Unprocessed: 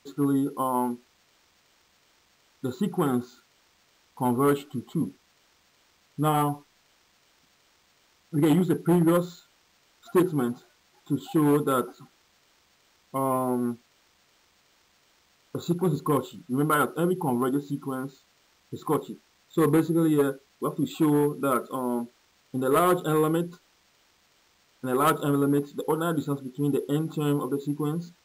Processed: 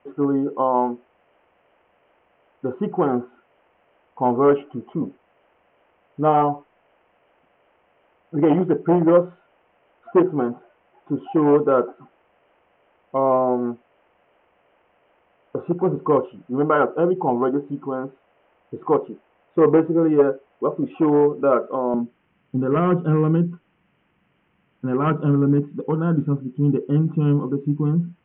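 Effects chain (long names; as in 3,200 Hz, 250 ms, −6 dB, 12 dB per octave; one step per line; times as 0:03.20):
Butterworth low-pass 3,000 Hz 96 dB per octave
parametric band 590 Hz +14 dB 1.6 octaves, from 0:21.94 170 Hz
level −2 dB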